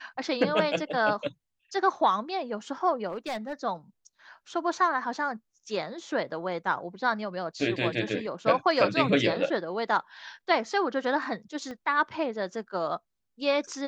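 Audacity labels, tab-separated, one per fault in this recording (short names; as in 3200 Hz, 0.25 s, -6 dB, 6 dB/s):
3.080000	3.530000	clipped -28 dBFS
11.710000	11.710000	pop -27 dBFS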